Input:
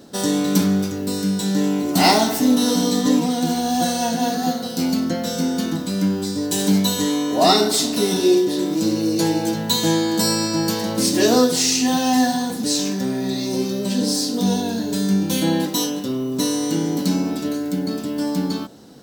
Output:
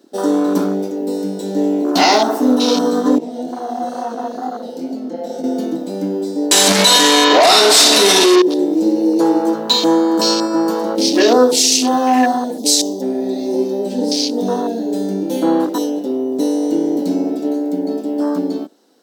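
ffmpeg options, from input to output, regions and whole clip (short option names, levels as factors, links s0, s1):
-filter_complex "[0:a]asettb=1/sr,asplit=3[s0][s1][s2];[s0]atrim=end=3.184[s3];[s1]atrim=start=3.18:end=5.44,asetpts=PTS-STARTPTS,afade=t=in:d=0.004:c=qsin,afade=t=out:st=2.256:d=0.004:c=qsin,highshelf=f=9500:g=-6,acompressor=threshold=0.0891:ratio=6:attack=3.2:release=140:knee=1:detection=peak,flanger=delay=18:depth=6.8:speed=2.2[s4];[s2]atrim=start=5.436[s5];[s3][s4]acrossfade=d=0.004:c1=hsin:c2=qsin[s6];[s6][s5]acrossfade=d=0.004:c1=qsin:c2=hsin,asettb=1/sr,asplit=3[s7][s8][s9];[s7]atrim=end=6.514[s10];[s8]atrim=start=6.51:end=8.42,asetpts=PTS-STARTPTS,afade=t=in:d=0.004:c=qsin,afade=t=out:st=1.906:d=0.004:c=qsin,lowshelf=f=210:t=q:w=1.5:g=6.5,asplit=2[s11][s12];[s12]adelay=50,volume=0.501[s13];[s11][s13]amix=inputs=2:normalize=0,atrim=end_sample=84231,asplit=2[s14][s15];[s15]highpass=f=720:p=1,volume=28.2,asoftclip=type=tanh:threshold=0.841[s16];[s14][s16]amix=inputs=2:normalize=0,lowpass=f=5600:p=1,volume=0.501[s17];[s9]atrim=start=8.416[s18];[s10][s17]acrossfade=d=0.004:c1=hsin:c2=qsin[s19];[s19][s18]acrossfade=d=0.004:c1=qsin:c2=hsin,asettb=1/sr,asplit=3[s20][s21][s22];[s20]atrim=end=12.584[s23];[s21]atrim=start=12.58:end=13.02,asetpts=PTS-STARTPTS,afade=t=in:d=0.004:c=qsin,afade=t=out:st=0.436:d=0.004:c=qsin,asuperstop=centerf=1900:order=8:qfactor=1,bass=f=250:g=-5,treble=f=4000:g=5[s24];[s22]atrim=start=13.016[s25];[s23][s24]acrossfade=d=0.004:c1=hsin:c2=qsin[s26];[s26][s25]acrossfade=d=0.004:c1=qsin:c2=hsin,afwtdn=0.0501,highpass=f=290:w=0.5412,highpass=f=290:w=1.3066,alimiter=level_in=2.82:limit=0.891:release=50:level=0:latency=1,volume=0.891"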